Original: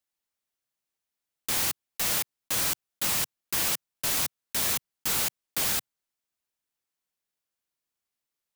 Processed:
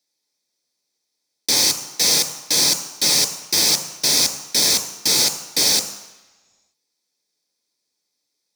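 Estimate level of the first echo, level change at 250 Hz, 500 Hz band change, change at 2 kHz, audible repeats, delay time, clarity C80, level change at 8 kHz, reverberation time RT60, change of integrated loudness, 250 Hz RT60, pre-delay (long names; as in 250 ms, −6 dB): no echo audible, +10.5 dB, +11.0 dB, +6.0 dB, no echo audible, no echo audible, 11.5 dB, +12.5 dB, 1.1 s, +10.5 dB, 1.0 s, 3 ms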